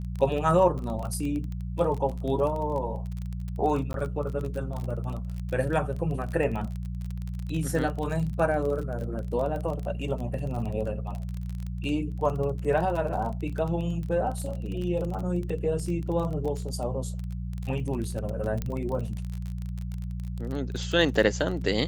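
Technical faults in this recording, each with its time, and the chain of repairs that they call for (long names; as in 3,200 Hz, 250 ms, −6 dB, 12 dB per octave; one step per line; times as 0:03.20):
surface crackle 31 per second −31 dBFS
mains hum 60 Hz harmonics 3 −33 dBFS
0:03.93–0:03.94: drop-out 12 ms
0:18.62: click −17 dBFS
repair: click removal
hum removal 60 Hz, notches 3
repair the gap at 0:03.93, 12 ms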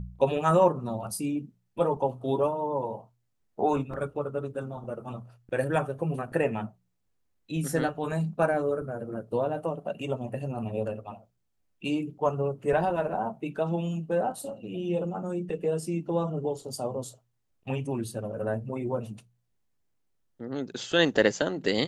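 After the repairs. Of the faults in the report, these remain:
none of them is left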